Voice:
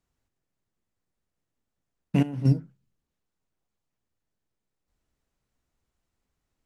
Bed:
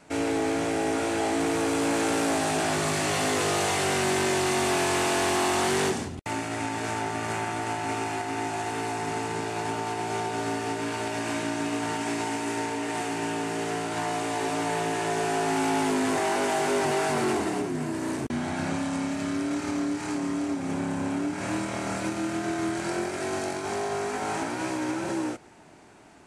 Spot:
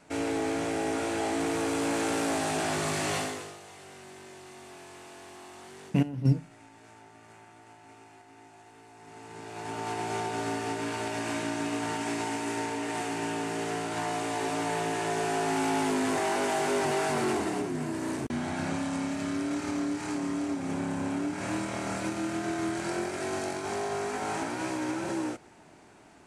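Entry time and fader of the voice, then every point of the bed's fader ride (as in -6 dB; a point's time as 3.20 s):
3.80 s, -2.5 dB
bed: 3.17 s -3.5 dB
3.60 s -23 dB
8.90 s -23 dB
9.90 s -2.5 dB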